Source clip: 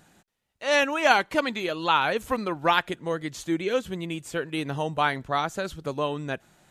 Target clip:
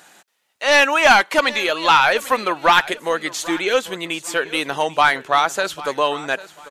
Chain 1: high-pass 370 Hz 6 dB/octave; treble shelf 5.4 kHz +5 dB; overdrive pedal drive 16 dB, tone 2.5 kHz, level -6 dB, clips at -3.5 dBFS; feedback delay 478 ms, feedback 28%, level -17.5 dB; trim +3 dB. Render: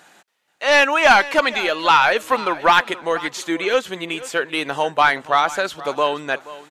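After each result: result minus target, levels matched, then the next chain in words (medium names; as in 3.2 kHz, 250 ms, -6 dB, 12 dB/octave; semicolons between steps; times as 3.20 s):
echo 317 ms early; 8 kHz band -3.5 dB
high-pass 370 Hz 6 dB/octave; treble shelf 5.4 kHz +5 dB; overdrive pedal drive 16 dB, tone 2.5 kHz, level -6 dB, clips at -3.5 dBFS; feedback delay 795 ms, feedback 28%, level -17.5 dB; trim +3 dB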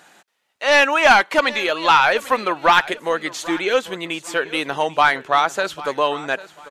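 8 kHz band -3.5 dB
high-pass 370 Hz 6 dB/octave; treble shelf 5.4 kHz +12.5 dB; overdrive pedal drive 16 dB, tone 2.5 kHz, level -6 dB, clips at -3.5 dBFS; feedback delay 795 ms, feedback 28%, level -17.5 dB; trim +3 dB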